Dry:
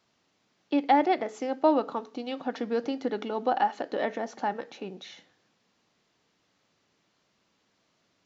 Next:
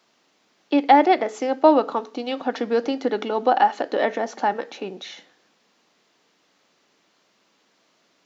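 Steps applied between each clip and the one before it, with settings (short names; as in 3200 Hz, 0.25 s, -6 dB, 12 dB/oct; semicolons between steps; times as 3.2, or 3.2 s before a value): HPF 240 Hz 12 dB/oct; gain +8 dB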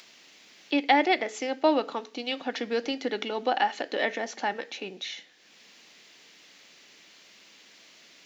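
resonant high shelf 1600 Hz +7.5 dB, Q 1.5; upward compressor, threshold -36 dBFS; gain -7 dB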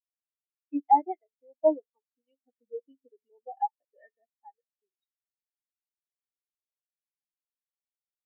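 spectral expander 4:1; gain -4 dB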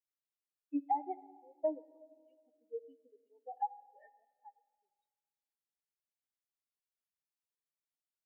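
compressor, threshold -24 dBFS, peak gain reduction 10 dB; reverb RT60 1.9 s, pre-delay 7 ms, DRR 15.5 dB; gain -5 dB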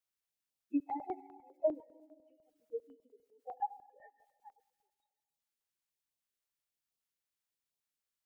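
bin magnitudes rounded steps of 30 dB; thin delay 0.144 s, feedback 58%, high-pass 1900 Hz, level -14 dB; stepped notch 10 Hz 230–1600 Hz; gain +3.5 dB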